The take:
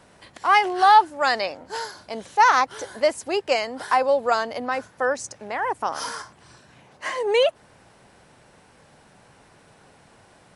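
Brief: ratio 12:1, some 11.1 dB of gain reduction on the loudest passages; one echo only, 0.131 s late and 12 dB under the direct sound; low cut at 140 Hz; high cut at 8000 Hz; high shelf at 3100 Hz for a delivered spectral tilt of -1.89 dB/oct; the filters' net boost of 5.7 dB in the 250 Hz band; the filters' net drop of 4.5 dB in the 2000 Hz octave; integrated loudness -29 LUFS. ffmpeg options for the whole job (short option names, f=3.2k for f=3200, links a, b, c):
-af "highpass=140,lowpass=8k,equalizer=f=250:t=o:g=8,equalizer=f=2k:t=o:g=-5,highshelf=f=3.1k:g=-3.5,acompressor=threshold=-22dB:ratio=12,aecho=1:1:131:0.251,volume=-0.5dB"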